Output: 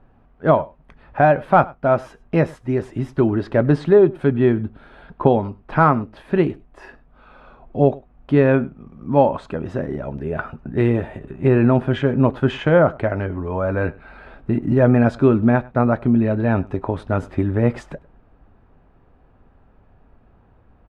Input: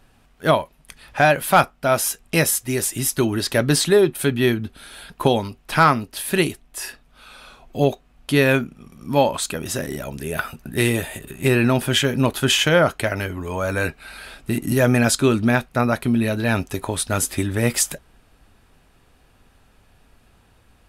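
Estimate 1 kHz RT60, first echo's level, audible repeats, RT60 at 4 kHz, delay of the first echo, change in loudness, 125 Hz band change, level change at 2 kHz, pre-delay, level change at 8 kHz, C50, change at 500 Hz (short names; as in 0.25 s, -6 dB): none, -23.0 dB, 1, none, 0.101 s, +1.0 dB, +3.0 dB, -5.5 dB, none, under -30 dB, none, +3.0 dB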